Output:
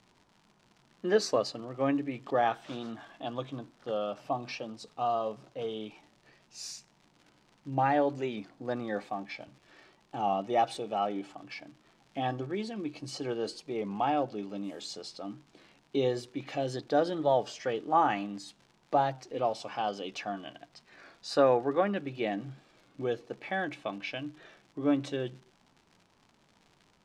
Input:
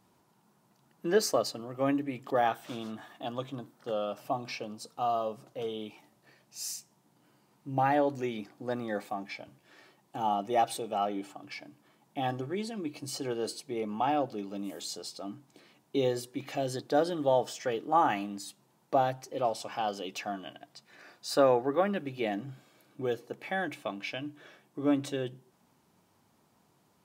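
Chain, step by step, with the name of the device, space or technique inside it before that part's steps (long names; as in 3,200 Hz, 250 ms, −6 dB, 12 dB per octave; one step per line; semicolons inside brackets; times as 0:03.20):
warped LP (wow of a warped record 33 1/3 rpm, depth 100 cents; surface crackle 140 per second −45 dBFS; pink noise bed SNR 43 dB)
low-pass filter 5,600 Hz 12 dB per octave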